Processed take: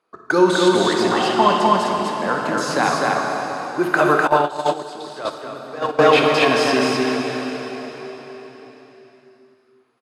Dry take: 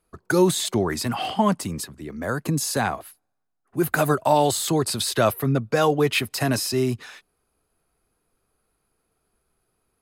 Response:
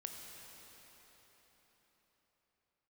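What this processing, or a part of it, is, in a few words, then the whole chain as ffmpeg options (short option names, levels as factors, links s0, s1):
station announcement: -filter_complex "[0:a]highpass=310,lowpass=4600,equalizer=f=1100:t=o:w=0.52:g=5,aecho=1:1:58.31|250.7:0.251|0.794[s0];[1:a]atrim=start_sample=2205[s1];[s0][s1]afir=irnorm=-1:irlink=0,asettb=1/sr,asplit=3[s2][s3][s4];[s2]atrim=end=4.274[s5];[s3]atrim=start=4.27:end=5.99,asetpts=PTS-STARTPTS,afade=t=in:d=0.004:c=qsin,afade=t=out:st=1.716:d=0.004:c=qsin,agate=range=0.141:threshold=0.126:ratio=16:detection=peak[s6];[s4]atrim=start=5.986[s7];[s5][s6]acrossfade=d=0.004:c1=hsin:c2=qsin[s8];[s8][s7]acrossfade=d=0.004:c1=qsin:c2=hsin,volume=2.66"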